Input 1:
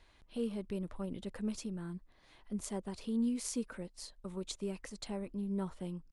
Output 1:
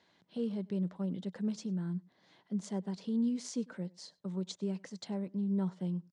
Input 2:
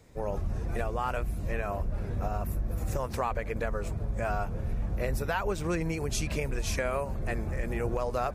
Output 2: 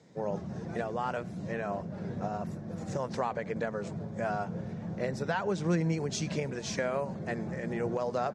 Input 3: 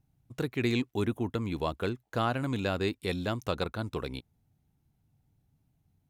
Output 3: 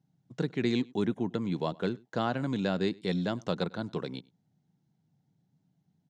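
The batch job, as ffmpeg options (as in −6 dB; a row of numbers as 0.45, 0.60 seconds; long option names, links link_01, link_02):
-filter_complex "[0:a]highpass=frequency=130:width=0.5412,highpass=frequency=130:width=1.3066,equalizer=frequency=180:width_type=q:width=4:gain=8,equalizer=frequency=1200:width_type=q:width=4:gain=-5,equalizer=frequency=2500:width_type=q:width=4:gain=-7,lowpass=frequency=6800:width=0.5412,lowpass=frequency=6800:width=1.3066,asplit=2[link_01][link_02];[link_02]adelay=99.13,volume=-25dB,highshelf=frequency=4000:gain=-2.23[link_03];[link_01][link_03]amix=inputs=2:normalize=0"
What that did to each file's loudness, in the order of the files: +3.0, −1.5, 0.0 LU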